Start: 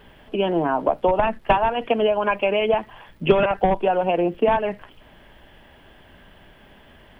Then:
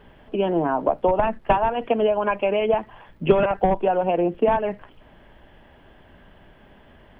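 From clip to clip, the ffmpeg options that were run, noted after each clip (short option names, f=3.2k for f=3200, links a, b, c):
-af "highshelf=f=2.7k:g=-11"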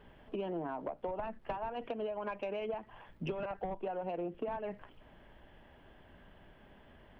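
-af "acompressor=threshold=-26dB:ratio=8,asoftclip=type=tanh:threshold=-19dB,volume=-8dB"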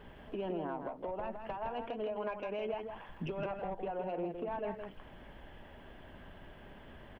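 -filter_complex "[0:a]alimiter=level_in=12dB:limit=-24dB:level=0:latency=1:release=392,volume=-12dB,asplit=2[a][b];[b]aecho=0:1:163:0.473[c];[a][c]amix=inputs=2:normalize=0,volume=5dB"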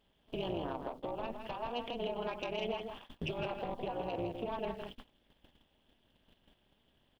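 -af "highshelf=f=2.6k:t=q:w=1.5:g=12,tremolo=f=240:d=0.889,agate=range=-21dB:threshold=-50dB:ratio=16:detection=peak,volume=4dB"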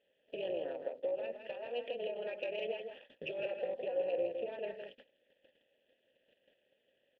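-filter_complex "[0:a]asplit=3[a][b][c];[a]bandpass=f=530:t=q:w=8,volume=0dB[d];[b]bandpass=f=1.84k:t=q:w=8,volume=-6dB[e];[c]bandpass=f=2.48k:t=q:w=8,volume=-9dB[f];[d][e][f]amix=inputs=3:normalize=0,volume=9.5dB"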